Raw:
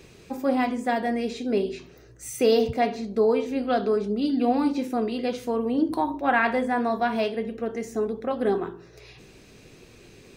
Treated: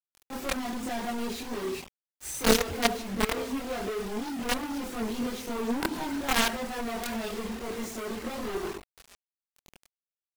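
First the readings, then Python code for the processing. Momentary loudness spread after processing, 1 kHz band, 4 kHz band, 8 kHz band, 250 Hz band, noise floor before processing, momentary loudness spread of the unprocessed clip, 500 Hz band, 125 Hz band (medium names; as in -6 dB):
10 LU, -7.0 dB, +4.5 dB, +7.5 dB, -6.5 dB, -51 dBFS, 8 LU, -9.0 dB, -2.5 dB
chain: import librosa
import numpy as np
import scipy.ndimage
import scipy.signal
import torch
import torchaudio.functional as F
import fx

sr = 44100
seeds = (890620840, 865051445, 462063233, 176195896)

y = fx.quant_companded(x, sr, bits=2)
y = fx.chorus_voices(y, sr, voices=6, hz=0.73, base_ms=24, depth_ms=3.0, mix_pct=60)
y = F.gain(torch.from_numpy(y), -5.0).numpy()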